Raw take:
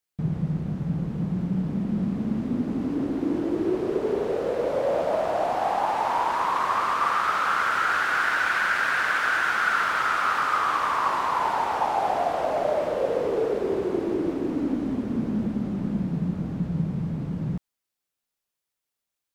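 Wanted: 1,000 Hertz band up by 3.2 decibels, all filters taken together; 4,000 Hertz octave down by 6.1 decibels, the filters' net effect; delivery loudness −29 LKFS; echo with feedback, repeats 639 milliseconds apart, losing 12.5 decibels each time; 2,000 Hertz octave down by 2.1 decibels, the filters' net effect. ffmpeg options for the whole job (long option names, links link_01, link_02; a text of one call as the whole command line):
ffmpeg -i in.wav -af "equalizer=frequency=1000:width_type=o:gain=6,equalizer=frequency=2000:width_type=o:gain=-5.5,equalizer=frequency=4000:width_type=o:gain=-6.5,aecho=1:1:639|1278|1917:0.237|0.0569|0.0137,volume=-5.5dB" out.wav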